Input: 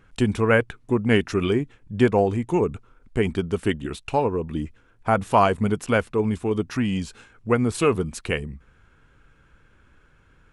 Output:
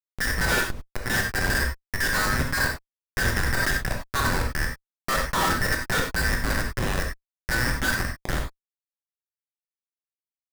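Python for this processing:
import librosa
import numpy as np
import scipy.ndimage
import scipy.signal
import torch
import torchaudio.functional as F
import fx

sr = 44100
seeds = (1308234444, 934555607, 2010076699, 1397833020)

y = fx.band_invert(x, sr, width_hz=2000)
y = fx.highpass(y, sr, hz=1400.0, slope=12, at=(6.75, 8.11))
y = fx.level_steps(y, sr, step_db=10)
y = fx.auto_swell(y, sr, attack_ms=182.0, at=(0.44, 1.1))
y = fx.schmitt(y, sr, flips_db=-25.5)
y = fx.rev_gated(y, sr, seeds[0], gate_ms=120, shape='flat', drr_db=0.5)
y = fx.env_flatten(y, sr, amount_pct=100, at=(3.36, 3.77))
y = y * 10.0 ** (3.5 / 20.0)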